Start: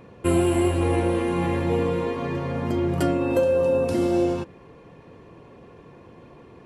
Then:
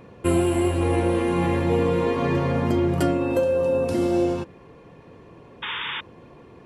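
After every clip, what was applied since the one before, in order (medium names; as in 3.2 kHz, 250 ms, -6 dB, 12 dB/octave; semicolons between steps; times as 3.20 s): gain riding 0.5 s; painted sound noise, 5.62–6.01 s, 830–3700 Hz -31 dBFS; trim +1 dB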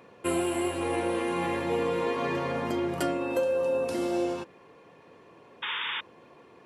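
high-pass 540 Hz 6 dB/octave; trim -2 dB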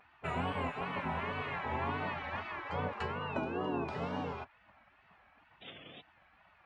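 wow and flutter 130 cents; tape spacing loss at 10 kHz 41 dB; spectral gate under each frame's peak -15 dB weak; trim +5.5 dB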